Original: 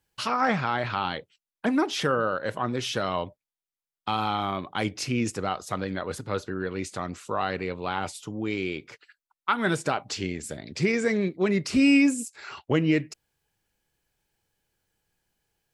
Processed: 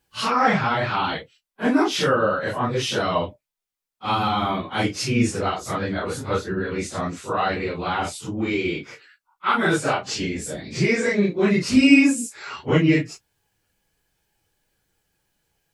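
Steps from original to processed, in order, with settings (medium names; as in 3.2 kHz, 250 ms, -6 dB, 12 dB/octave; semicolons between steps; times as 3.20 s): phase randomisation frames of 100 ms; trim +5.5 dB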